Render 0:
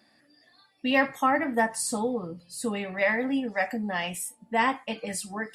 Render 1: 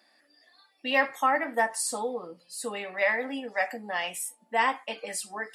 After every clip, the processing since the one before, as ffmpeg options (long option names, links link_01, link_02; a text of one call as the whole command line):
ffmpeg -i in.wav -af "highpass=430" out.wav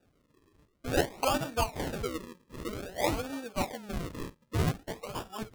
ffmpeg -i in.wav -af "acrusher=samples=41:mix=1:aa=0.000001:lfo=1:lforange=41:lforate=0.52,volume=-3.5dB" out.wav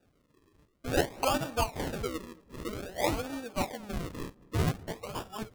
ffmpeg -i in.wav -filter_complex "[0:a]asplit=2[link_01][link_02];[link_02]adelay=226,lowpass=frequency=1000:poles=1,volume=-21dB,asplit=2[link_03][link_04];[link_04]adelay=226,lowpass=frequency=1000:poles=1,volume=0.46,asplit=2[link_05][link_06];[link_06]adelay=226,lowpass=frequency=1000:poles=1,volume=0.46[link_07];[link_01][link_03][link_05][link_07]amix=inputs=4:normalize=0" out.wav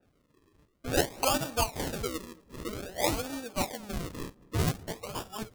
ffmpeg -i in.wav -af "adynamicequalizer=threshold=0.00447:dfrequency=3600:dqfactor=0.7:tfrequency=3600:tqfactor=0.7:attack=5:release=100:ratio=0.375:range=3.5:mode=boostabove:tftype=highshelf" out.wav